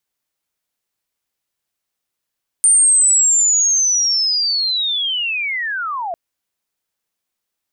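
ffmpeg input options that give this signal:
-f lavfi -i "aevalsrc='pow(10,(-8-13*t/3.5)/20)*sin(2*PI*(9000*t-8350*t*t/(2*3.5)))':d=3.5:s=44100"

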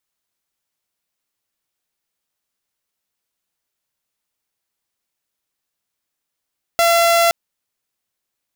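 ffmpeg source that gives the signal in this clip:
-f lavfi -i "aevalsrc='0.355*(2*mod(679*t,1)-1)':d=0.52:s=44100"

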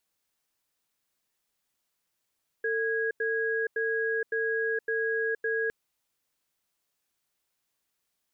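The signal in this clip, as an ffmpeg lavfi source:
-f lavfi -i "aevalsrc='0.0376*(sin(2*PI*449*t)+sin(2*PI*1650*t))*clip(min(mod(t,0.56),0.47-mod(t,0.56))/0.005,0,1)':d=3.06:s=44100"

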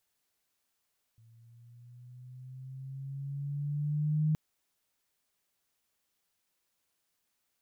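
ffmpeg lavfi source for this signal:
-f lavfi -i "aevalsrc='pow(10,(-24+33*(t/3.17-1))/20)*sin(2*PI*113*3.17/(5.5*log(2)/12)*(exp(5.5*log(2)/12*t/3.17)-1))':d=3.17:s=44100"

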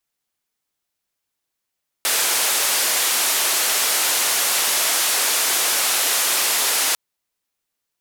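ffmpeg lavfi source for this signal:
-f lavfi -i "anoisesrc=c=white:d=4.9:r=44100:seed=1,highpass=f=450,lowpass=f=13000,volume=-12.2dB"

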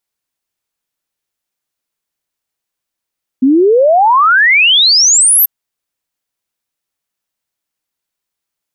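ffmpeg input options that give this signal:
-f lavfi -i "aevalsrc='0.562*clip(min(t,2.04-t)/0.01,0,1)*sin(2*PI*250*2.04/log(13000/250)*(exp(log(13000/250)*t/2.04)-1))':d=2.04:s=44100"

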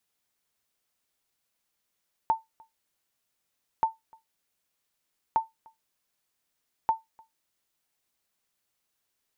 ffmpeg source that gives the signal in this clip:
-f lavfi -i "aevalsrc='0.178*(sin(2*PI*894*mod(t,1.53))*exp(-6.91*mod(t,1.53)/0.17)+0.0355*sin(2*PI*894*max(mod(t,1.53)-0.3,0))*exp(-6.91*max(mod(t,1.53)-0.3,0)/0.17))':d=6.12:s=44100"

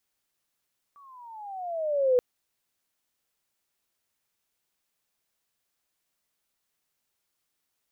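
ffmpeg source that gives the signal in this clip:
-f lavfi -i "aevalsrc='pow(10,(-17+33*(t/1.23-1))/20)*sin(2*PI*1160*1.23/(-15*log(2)/12)*(exp(-15*log(2)/12*t/1.23)-1))':d=1.23:s=44100"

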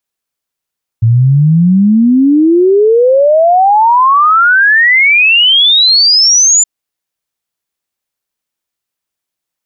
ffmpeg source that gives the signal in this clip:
-f lavfi -i "aevalsrc='0.631*clip(min(t,5.62-t)/0.01,0,1)*sin(2*PI*110*5.62/log(7200/110)*(exp(log(7200/110)*t/5.62)-1))':d=5.62:s=44100"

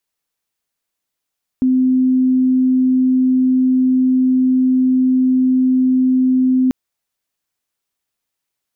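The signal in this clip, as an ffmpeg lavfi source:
-f lavfi -i "sine=f=257:d=5.09:r=44100,volume=7.56dB"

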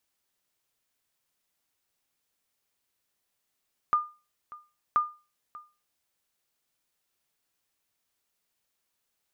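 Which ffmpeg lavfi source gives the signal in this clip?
-f lavfi -i "aevalsrc='0.158*(sin(2*PI*1210*mod(t,1.03))*exp(-6.91*mod(t,1.03)/0.31)+0.0944*sin(2*PI*1210*max(mod(t,1.03)-0.59,0))*exp(-6.91*max(mod(t,1.03)-0.59,0)/0.31))':d=2.06:s=44100"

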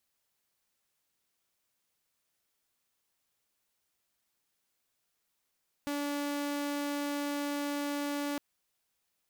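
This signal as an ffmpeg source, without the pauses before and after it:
-f lavfi -i "aevalsrc='0.0335*(2*mod(288*t,1)-1)':d=2.51:s=44100"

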